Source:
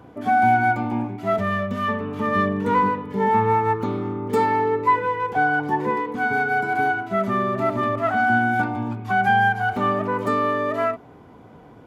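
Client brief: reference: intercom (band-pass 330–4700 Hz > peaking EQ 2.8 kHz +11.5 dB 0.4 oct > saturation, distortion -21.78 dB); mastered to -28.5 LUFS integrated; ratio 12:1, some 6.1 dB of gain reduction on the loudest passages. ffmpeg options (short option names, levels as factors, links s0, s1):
-af "acompressor=threshold=0.112:ratio=12,highpass=330,lowpass=4700,equalizer=f=2800:t=o:w=0.4:g=11.5,asoftclip=threshold=0.158,volume=0.75"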